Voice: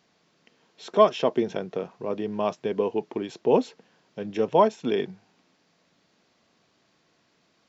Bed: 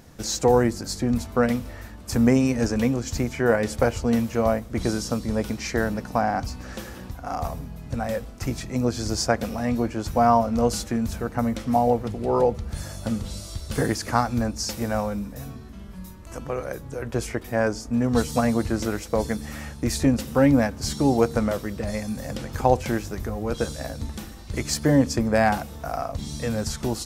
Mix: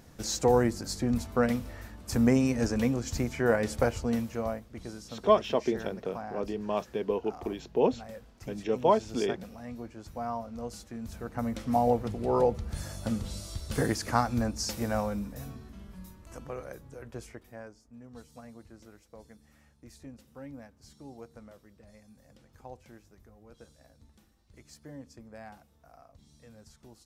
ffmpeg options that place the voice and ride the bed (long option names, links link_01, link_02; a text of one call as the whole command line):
ffmpeg -i stem1.wav -i stem2.wav -filter_complex "[0:a]adelay=4300,volume=-4.5dB[link_01];[1:a]volume=7.5dB,afade=type=out:start_time=3.79:duration=0.99:silence=0.251189,afade=type=in:start_time=10.9:duration=0.97:silence=0.237137,afade=type=out:start_time=15.25:duration=2.5:silence=0.0749894[link_02];[link_01][link_02]amix=inputs=2:normalize=0" out.wav